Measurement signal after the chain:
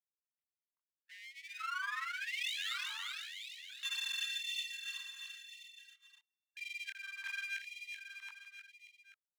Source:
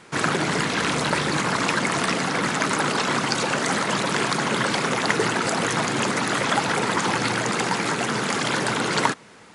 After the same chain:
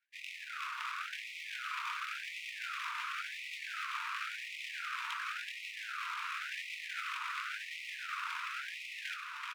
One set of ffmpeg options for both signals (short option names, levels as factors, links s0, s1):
-filter_complex "[0:a]afwtdn=0.0224,aemphasis=mode=reproduction:type=riaa,areverse,acompressor=threshold=0.0316:ratio=6,areverse,aeval=exprs='val(0)*sin(2*PI*410*n/s)':c=same,aeval=exprs='0.0891*(cos(1*acos(clip(val(0)/0.0891,-1,1)))-cos(1*PI/2))+0.00141*(cos(4*acos(clip(val(0)/0.0891,-1,1)))-cos(4*PI/2))':c=same,flanger=delay=19:depth=7.8:speed=0.79,adynamicsmooth=sensitivity=5:basefreq=790,highpass=f=450:w=0.5412,highpass=f=450:w=1.3066,equalizer=f=470:t=q:w=4:g=-7,equalizer=f=690:t=q:w=4:g=3,equalizer=f=1100:t=q:w=4:g=-4,equalizer=f=1800:t=q:w=4:g=7,equalizer=f=2700:t=q:w=4:g=-9,lowpass=f=2900:w=0.5412,lowpass=f=2900:w=1.3066,aeval=exprs='abs(val(0))':c=same,asplit=2[s0][s1];[s1]aecho=0:1:380|722|1030|1307|1556:0.631|0.398|0.251|0.158|0.1[s2];[s0][s2]amix=inputs=2:normalize=0,afftfilt=real='re*gte(b*sr/1024,880*pow(1900/880,0.5+0.5*sin(2*PI*0.93*pts/sr)))':imag='im*gte(b*sr/1024,880*pow(1900/880,0.5+0.5*sin(2*PI*0.93*pts/sr)))':win_size=1024:overlap=0.75,volume=2.24"